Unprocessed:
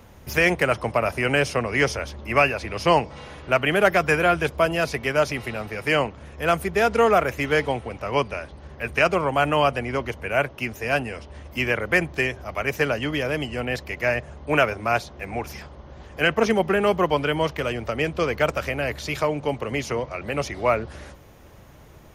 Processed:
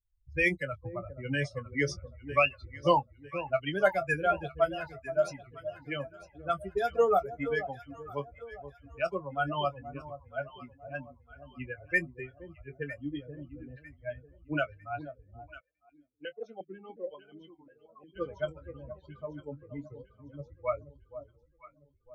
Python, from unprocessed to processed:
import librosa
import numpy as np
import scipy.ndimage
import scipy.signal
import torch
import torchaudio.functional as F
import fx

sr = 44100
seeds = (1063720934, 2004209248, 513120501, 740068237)

y = fx.bin_expand(x, sr, power=3.0)
y = fx.env_lowpass(y, sr, base_hz=440.0, full_db=-22.0)
y = fx.doubler(y, sr, ms=21.0, db=-11.5)
y = fx.echo_alternate(y, sr, ms=476, hz=870.0, feedback_pct=57, wet_db=-11.0)
y = fx.vowel_held(y, sr, hz=5.6, at=(15.59, 18.15), fade=0.02)
y = y * 10.0 ** (-2.0 / 20.0)